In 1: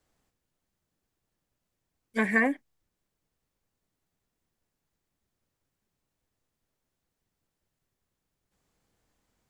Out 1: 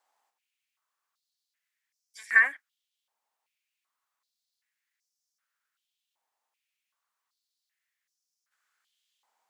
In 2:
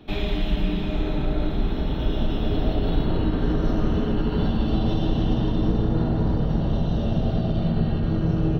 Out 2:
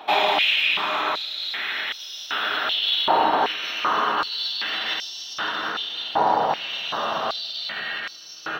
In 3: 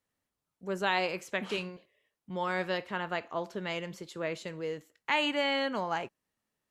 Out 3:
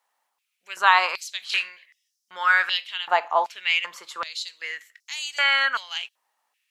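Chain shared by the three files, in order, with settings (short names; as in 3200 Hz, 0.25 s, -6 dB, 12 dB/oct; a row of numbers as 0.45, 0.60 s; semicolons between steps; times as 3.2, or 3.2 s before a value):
stepped high-pass 2.6 Hz 850–5500 Hz; match loudness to -23 LUFS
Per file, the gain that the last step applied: -2.0, +11.0, +8.5 dB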